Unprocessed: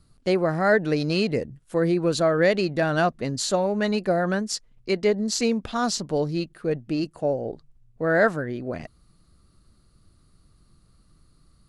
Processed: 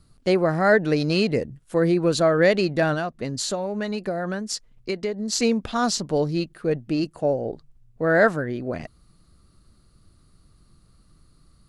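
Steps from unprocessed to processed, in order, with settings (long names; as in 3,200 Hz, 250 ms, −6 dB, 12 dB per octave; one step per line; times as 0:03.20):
0:02.93–0:05.33: downward compressor, threshold −26 dBFS, peak gain reduction 9.5 dB
level +2 dB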